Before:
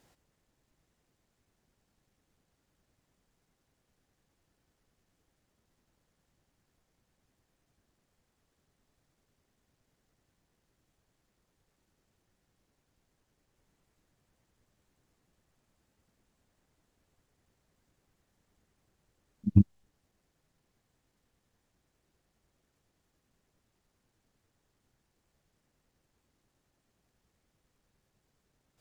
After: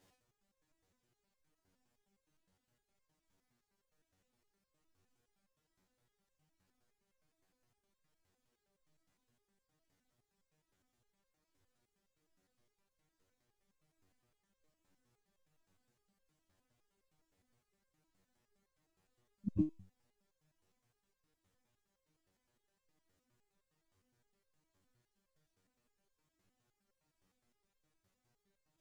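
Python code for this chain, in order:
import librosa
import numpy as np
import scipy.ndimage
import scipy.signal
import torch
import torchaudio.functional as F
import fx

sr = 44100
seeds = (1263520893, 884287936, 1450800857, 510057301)

y = fx.resonator_held(x, sr, hz=9.7, low_hz=94.0, high_hz=530.0)
y = y * 10.0 ** (6.0 / 20.0)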